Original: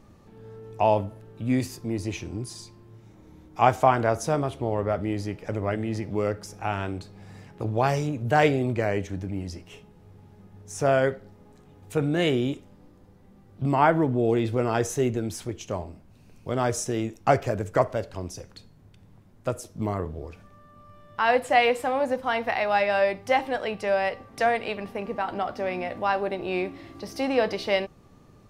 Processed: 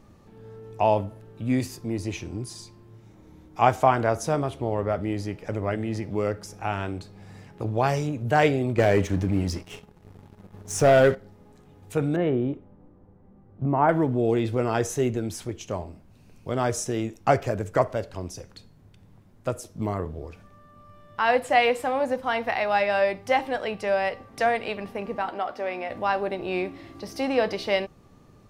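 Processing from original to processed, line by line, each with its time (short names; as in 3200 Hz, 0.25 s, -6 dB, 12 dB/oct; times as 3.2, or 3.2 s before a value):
8.78–11.15 sample leveller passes 2
12.16–13.89 LPF 1200 Hz
25.29–25.9 tone controls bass -13 dB, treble -4 dB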